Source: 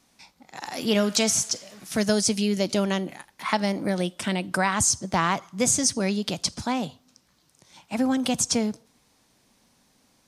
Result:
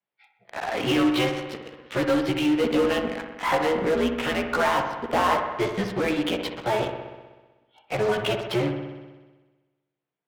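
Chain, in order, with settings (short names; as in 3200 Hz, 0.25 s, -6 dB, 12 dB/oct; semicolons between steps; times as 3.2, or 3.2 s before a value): short-time reversal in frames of 34 ms; mistuned SSB -110 Hz 340–3300 Hz; dynamic EQ 2000 Hz, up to -3 dB, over -43 dBFS, Q 1.7; in parallel at -12 dB: fuzz box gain 37 dB, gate -46 dBFS; on the sum: spectral noise reduction 20 dB; on a send: dark delay 63 ms, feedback 71%, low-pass 2300 Hz, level -7 dB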